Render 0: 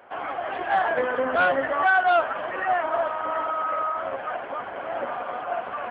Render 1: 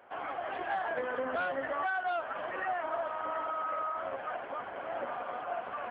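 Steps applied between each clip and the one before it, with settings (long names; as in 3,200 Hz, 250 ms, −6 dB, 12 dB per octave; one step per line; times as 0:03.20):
downward compressor, threshold −23 dBFS, peak gain reduction 7.5 dB
level −7 dB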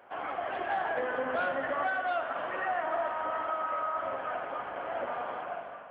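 fade-out on the ending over 0.60 s
spring reverb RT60 2.9 s, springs 41/47 ms, chirp 55 ms, DRR 5 dB
level +1.5 dB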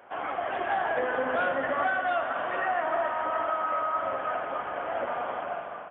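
on a send: single-tap delay 423 ms −11 dB
on the sum: downsampling to 8,000 Hz
level +3.5 dB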